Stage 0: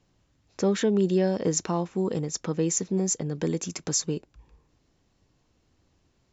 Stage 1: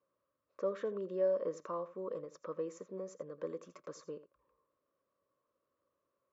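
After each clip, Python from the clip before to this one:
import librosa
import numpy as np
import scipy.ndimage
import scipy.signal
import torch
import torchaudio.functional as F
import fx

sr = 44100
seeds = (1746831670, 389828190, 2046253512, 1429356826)

y = fx.double_bandpass(x, sr, hz=790.0, octaves=0.99)
y = y + 10.0 ** (-16.0 / 20.0) * np.pad(y, (int(83 * sr / 1000.0), 0))[:len(y)]
y = y * librosa.db_to_amplitude(-1.5)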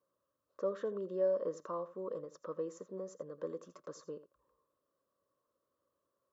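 y = fx.peak_eq(x, sr, hz=2300.0, db=-12.0, octaves=0.38)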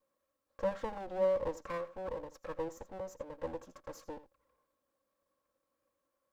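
y = fx.lower_of_two(x, sr, delay_ms=3.7)
y = y * librosa.db_to_amplitude(2.0)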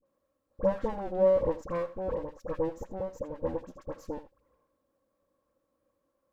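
y = fx.tilt_shelf(x, sr, db=6.5, hz=920.0)
y = fx.dispersion(y, sr, late='highs', ms=57.0, hz=1300.0)
y = y * librosa.db_to_amplitude(4.0)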